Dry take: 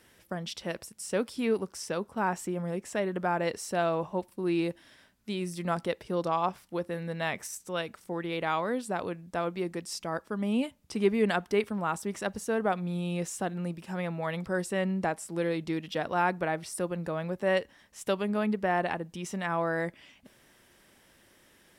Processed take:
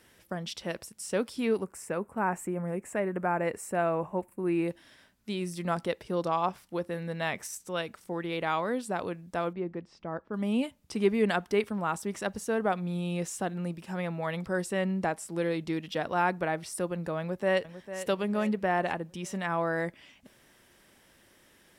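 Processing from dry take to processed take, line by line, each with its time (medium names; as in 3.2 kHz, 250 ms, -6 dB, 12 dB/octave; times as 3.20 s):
1.64–4.68 s: high-order bell 4.3 kHz -14.5 dB 1.2 oct
9.53–10.34 s: tape spacing loss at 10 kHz 40 dB
17.19–18.01 s: echo throw 450 ms, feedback 50%, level -12 dB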